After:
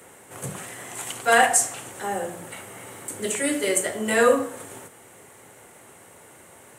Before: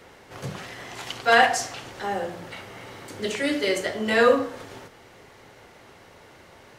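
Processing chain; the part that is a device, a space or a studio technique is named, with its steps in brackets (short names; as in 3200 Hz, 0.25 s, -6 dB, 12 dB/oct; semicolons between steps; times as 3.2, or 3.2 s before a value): budget condenser microphone (HPF 98 Hz; resonant high shelf 6500 Hz +10.5 dB, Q 3)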